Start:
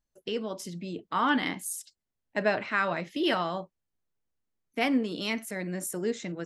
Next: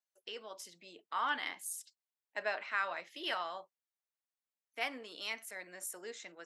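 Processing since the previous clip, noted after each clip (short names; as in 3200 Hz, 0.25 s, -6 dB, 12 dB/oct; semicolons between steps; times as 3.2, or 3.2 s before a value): HPF 740 Hz 12 dB/oct; gain -6.5 dB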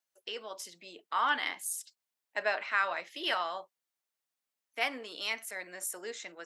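low shelf 130 Hz -8.5 dB; gain +5.5 dB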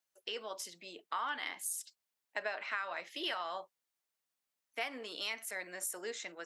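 compressor 6:1, threshold -34 dBFS, peak gain reduction 10.5 dB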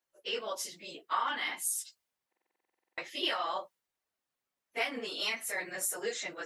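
phase scrambler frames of 50 ms; stuck buffer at 2.28, samples 2048, times 14; mismatched tape noise reduction decoder only; gain +5.5 dB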